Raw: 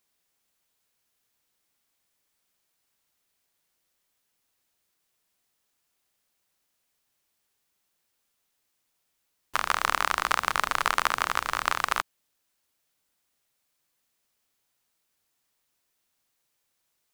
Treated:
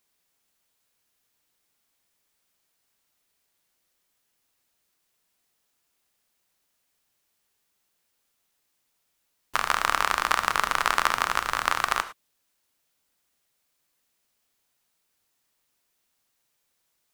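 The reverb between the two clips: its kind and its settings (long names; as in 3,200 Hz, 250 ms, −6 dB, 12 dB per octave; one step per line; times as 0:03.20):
reverb whose tail is shaped and stops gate 130 ms flat, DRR 10.5 dB
level +1.5 dB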